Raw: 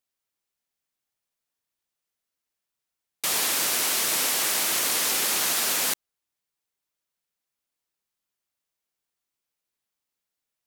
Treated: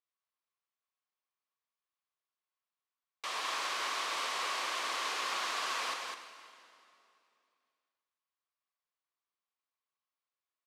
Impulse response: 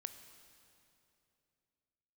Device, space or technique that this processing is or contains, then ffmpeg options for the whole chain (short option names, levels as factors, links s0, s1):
station announcement: -filter_complex "[0:a]highpass=470,lowpass=3900,equalizer=f=1100:t=o:w=0.26:g=11.5,aecho=1:1:43.73|204.1:0.316|0.631[s0];[1:a]atrim=start_sample=2205[s1];[s0][s1]afir=irnorm=-1:irlink=0,volume=0.562"